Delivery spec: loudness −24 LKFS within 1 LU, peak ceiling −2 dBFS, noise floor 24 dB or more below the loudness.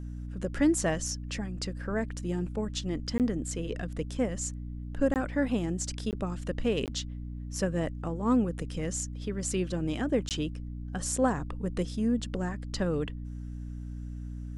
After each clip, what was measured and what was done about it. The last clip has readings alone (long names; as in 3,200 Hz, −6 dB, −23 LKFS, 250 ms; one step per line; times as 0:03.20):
number of dropouts 5; longest dropout 18 ms; mains hum 60 Hz; hum harmonics up to 300 Hz; level of the hum −35 dBFS; integrated loudness −32.0 LKFS; sample peak −13.5 dBFS; target loudness −24.0 LKFS
→ repair the gap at 0:03.18/0:05.14/0:06.11/0:06.86/0:10.29, 18 ms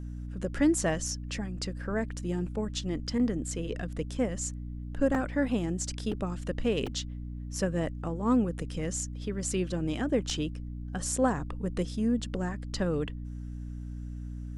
number of dropouts 0; mains hum 60 Hz; hum harmonics up to 300 Hz; level of the hum −35 dBFS
→ mains-hum notches 60/120/180/240/300 Hz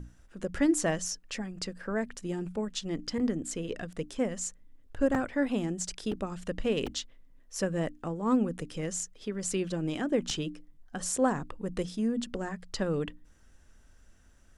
mains hum none found; integrated loudness −32.5 LKFS; sample peak −14.0 dBFS; target loudness −24.0 LKFS
→ level +8.5 dB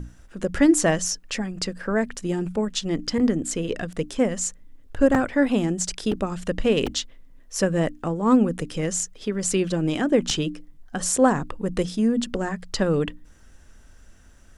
integrated loudness −24.0 LKFS; sample peak −5.5 dBFS; background noise floor −50 dBFS